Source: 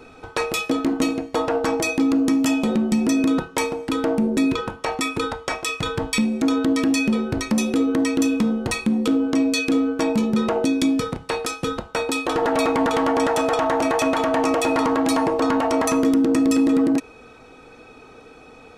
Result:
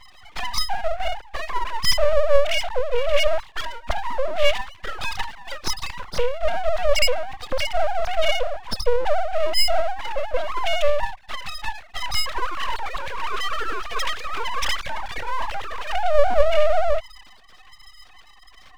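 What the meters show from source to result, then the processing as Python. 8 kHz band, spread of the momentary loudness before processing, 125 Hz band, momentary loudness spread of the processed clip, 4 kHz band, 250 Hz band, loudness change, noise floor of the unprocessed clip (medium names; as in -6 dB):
-5.0 dB, 7 LU, -5.0 dB, 11 LU, +4.5 dB, -29.5 dB, -3.5 dB, -46 dBFS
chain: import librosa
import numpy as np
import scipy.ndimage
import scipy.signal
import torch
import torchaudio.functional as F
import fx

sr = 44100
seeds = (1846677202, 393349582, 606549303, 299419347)

y = fx.sine_speech(x, sr)
y = fx.env_flanger(y, sr, rest_ms=6.5, full_db=-18.5)
y = np.abs(y)
y = y * librosa.db_to_amplitude(3.5)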